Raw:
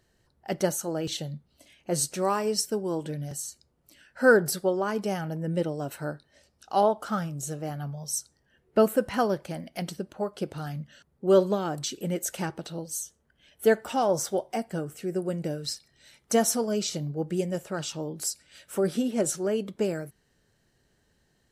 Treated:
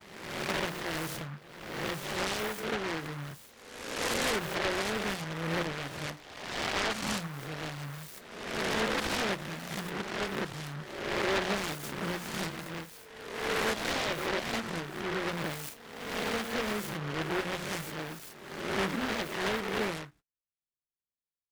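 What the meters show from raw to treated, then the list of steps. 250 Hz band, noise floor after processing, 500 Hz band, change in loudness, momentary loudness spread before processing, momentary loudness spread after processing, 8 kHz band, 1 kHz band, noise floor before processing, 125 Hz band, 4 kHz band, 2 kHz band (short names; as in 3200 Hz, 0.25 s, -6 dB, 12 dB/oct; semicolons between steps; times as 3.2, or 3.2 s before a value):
-6.5 dB, under -85 dBFS, -9.0 dB, -5.0 dB, 13 LU, 12 LU, -8.5 dB, -3.5 dB, -70 dBFS, -5.5 dB, +2.5 dB, +2.0 dB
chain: spectral swells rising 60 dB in 1.18 s; limiter -16.5 dBFS, peak gain reduction 9.5 dB; LPF 3400 Hz 12 dB/oct; notches 60/120/180/240/300 Hz; gate -52 dBFS, range -37 dB; noise-modulated delay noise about 1200 Hz, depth 0.34 ms; gain -6 dB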